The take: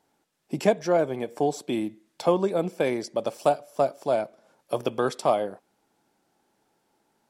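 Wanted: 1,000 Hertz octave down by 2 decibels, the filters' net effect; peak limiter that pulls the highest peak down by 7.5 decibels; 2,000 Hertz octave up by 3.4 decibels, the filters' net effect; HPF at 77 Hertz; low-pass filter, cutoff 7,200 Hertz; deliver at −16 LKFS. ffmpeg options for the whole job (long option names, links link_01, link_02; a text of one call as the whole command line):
ffmpeg -i in.wav -af "highpass=77,lowpass=7200,equalizer=frequency=1000:width_type=o:gain=-4.5,equalizer=frequency=2000:width_type=o:gain=6,volume=14dB,alimiter=limit=-2.5dB:level=0:latency=1" out.wav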